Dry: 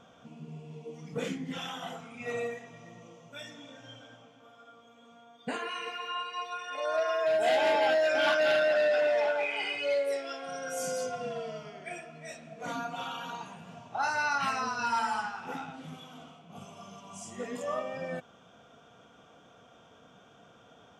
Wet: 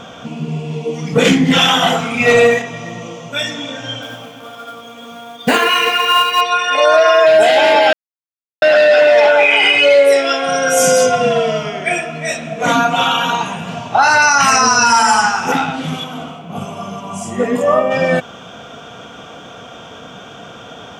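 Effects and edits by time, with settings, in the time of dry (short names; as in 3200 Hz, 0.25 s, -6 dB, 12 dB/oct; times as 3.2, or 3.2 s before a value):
1.25–2.62 sample leveller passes 1
4.02–6.41 short-mantissa float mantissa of 2-bit
7.93–8.62 mute
9.31–13.68 notch 4500 Hz, Q 6.5
14.22–15.52 resonant high shelf 4900 Hz +6 dB, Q 3
16.03–17.9 bell 4700 Hz -6 dB -> -15 dB 2.2 oct
whole clip: bell 3100 Hz +3.5 dB 1.6 oct; maximiser +23 dB; gain -1 dB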